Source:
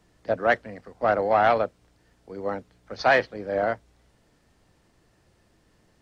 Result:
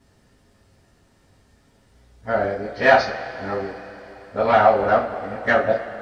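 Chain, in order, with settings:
played backwards from end to start
coupled-rooms reverb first 0.29 s, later 4 s, from −21 dB, DRR −6 dB
level −2.5 dB

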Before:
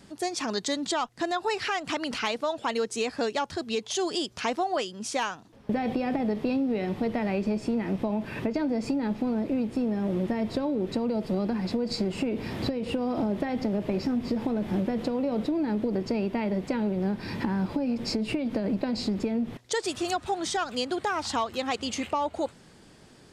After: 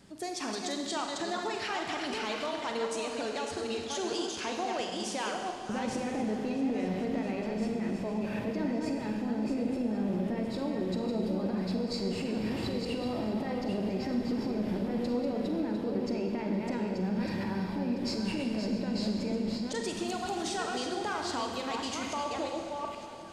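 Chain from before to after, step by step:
delay that plays each chunk backwards 459 ms, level −5 dB
brickwall limiter −21 dBFS, peak gain reduction 7.5 dB
on a send: feedback echo with a long and a short gap by turns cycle 1,090 ms, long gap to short 1.5 to 1, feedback 58%, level −18 dB
on the sum: four-comb reverb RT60 1.9 s, combs from 33 ms, DRR 3 dB
level −5 dB

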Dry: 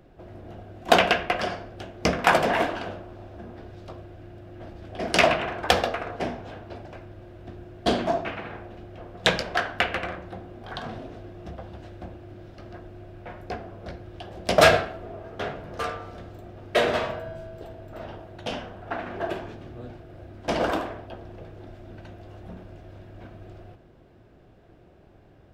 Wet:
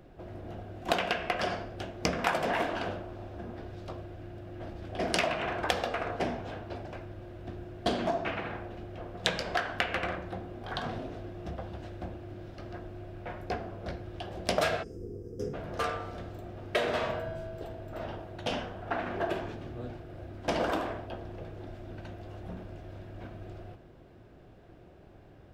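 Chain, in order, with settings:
hum removal 218.5 Hz, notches 40
gain on a spectral selection 0:14.83–0:15.54, 530–4,800 Hz −26 dB
downward compressor 5 to 1, threshold −26 dBFS, peak gain reduction 14 dB

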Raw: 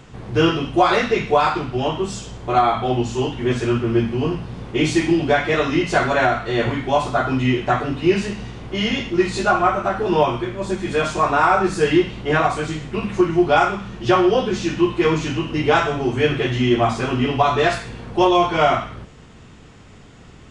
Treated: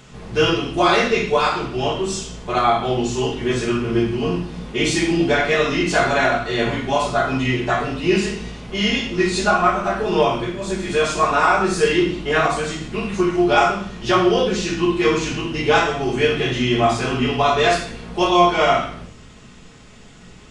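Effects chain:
high-shelf EQ 2,400 Hz +8.5 dB
on a send: convolution reverb RT60 0.50 s, pre-delay 5 ms, DRR 1 dB
on the sum: level −4 dB

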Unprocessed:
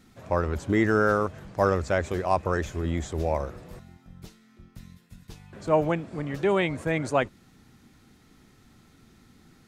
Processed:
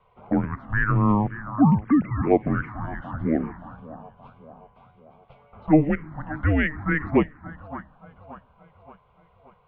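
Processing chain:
0:01.57–0:02.23: three sine waves on the formant tracks
echo with a time of its own for lows and highs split 420 Hz, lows 321 ms, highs 576 ms, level −14 dB
single-sideband voice off tune −310 Hz 440–2,700 Hz
phaser swept by the level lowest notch 290 Hz, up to 1,500 Hz, full sweep at −20 dBFS
level +7.5 dB

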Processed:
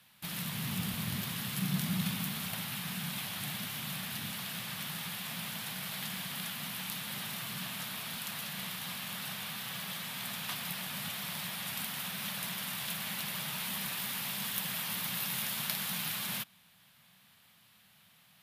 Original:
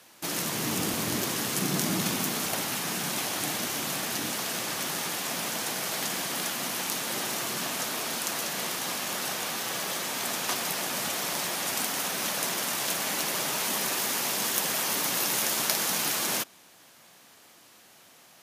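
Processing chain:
drawn EQ curve 190 Hz 0 dB, 320 Hz −22 dB, 960 Hz −11 dB, 3,600 Hz −4 dB, 6,300 Hz −17 dB, 12,000 Hz −6 dB

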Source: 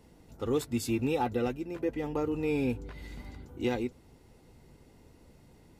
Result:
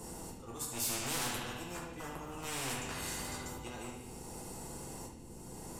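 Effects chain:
loose part that buzzes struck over −33 dBFS, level −41 dBFS
parametric band 500 Hz +5.5 dB 0.45 octaves
volume swells 705 ms
asymmetric clip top −38.5 dBFS, bottom −21 dBFS
octave-band graphic EQ 125/250/500/1,000/2,000/4,000/8,000 Hz +4/+5/−11/+4/−10/−8/+11 dB
feedback echo with a band-pass in the loop 74 ms, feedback 72%, band-pass 2,900 Hz, level −7 dB
rectangular room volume 43 cubic metres, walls mixed, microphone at 0.96 metres
every bin compressed towards the loudest bin 4 to 1
level −7.5 dB

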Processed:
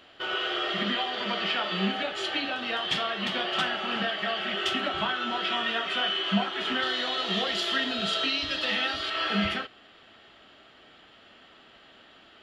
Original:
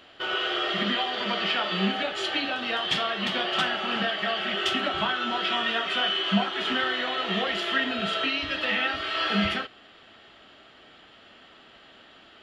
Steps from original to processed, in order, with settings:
0:06.82–0:09.10: high shelf with overshoot 3,200 Hz +7 dB, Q 1.5
level −2 dB

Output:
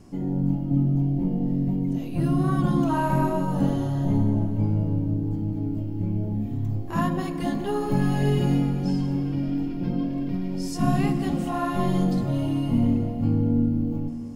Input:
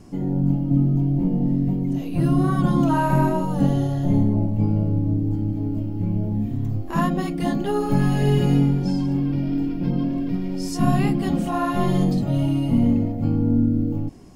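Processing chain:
dense smooth reverb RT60 3.8 s, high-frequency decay 0.9×, DRR 9.5 dB
level −3.5 dB

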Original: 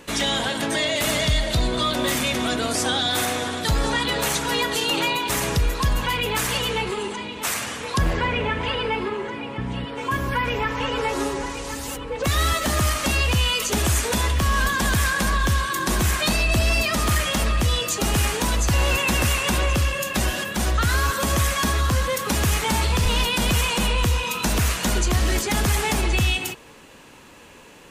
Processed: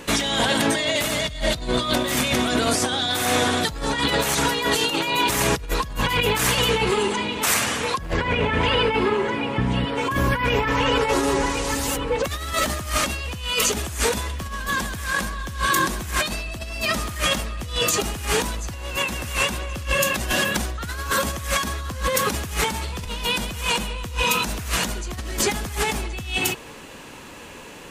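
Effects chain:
compressor whose output falls as the input rises −25 dBFS, ratio −0.5
level +2.5 dB

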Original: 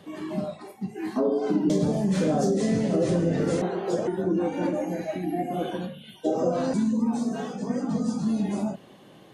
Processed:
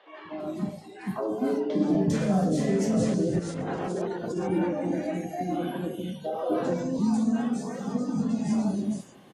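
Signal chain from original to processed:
0:03.14–0:04.26: compressor whose output falls as the input rises −30 dBFS, ratio −1
three-band delay without the direct sound mids, lows, highs 250/400 ms, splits 500/3,700 Hz

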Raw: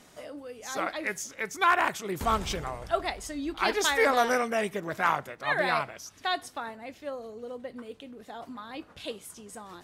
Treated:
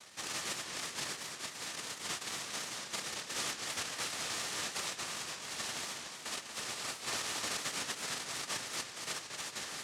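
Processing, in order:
running median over 41 samples
high-shelf EQ 5,200 Hz +8 dB
reversed playback
downward compressor 6 to 1, threshold −42 dBFS, peak gain reduction 17.5 dB
reversed playback
brickwall limiter −38 dBFS, peak gain reduction 7.5 dB
cochlear-implant simulation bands 1
hollow resonant body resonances 1,200/1,800 Hz, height 6 dB
feedback echo with a swinging delay time 228 ms, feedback 59%, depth 175 cents, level −6 dB
level +5.5 dB

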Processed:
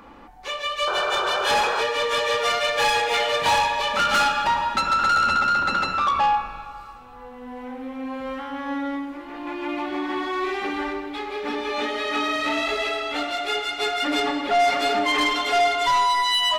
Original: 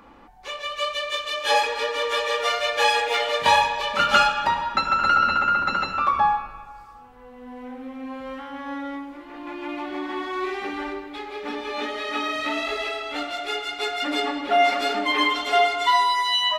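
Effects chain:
sound drawn into the spectrogram noise, 0:00.87–0:01.82, 350–1,600 Hz −28 dBFS
soft clipping −19.5 dBFS, distortion −11 dB
dense smooth reverb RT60 3.1 s, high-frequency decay 0.95×, DRR 14.5 dB
level +3.5 dB

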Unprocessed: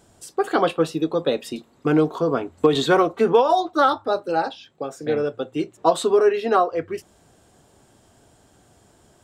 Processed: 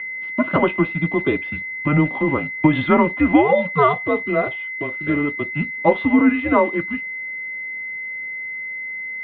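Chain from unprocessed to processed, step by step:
steady tone 2,200 Hz −26 dBFS
dead-zone distortion −39 dBFS
single-sideband voice off tune −150 Hz 270–3,000 Hz
level +2.5 dB

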